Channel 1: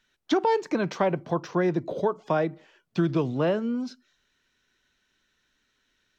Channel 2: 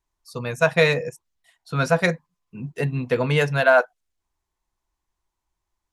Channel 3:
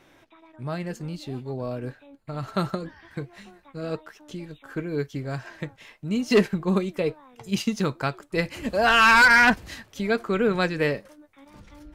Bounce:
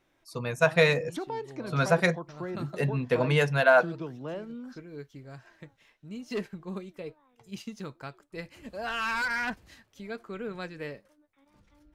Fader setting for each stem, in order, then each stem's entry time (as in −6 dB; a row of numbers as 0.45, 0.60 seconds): −12.5, −4.0, −14.5 decibels; 0.85, 0.00, 0.00 seconds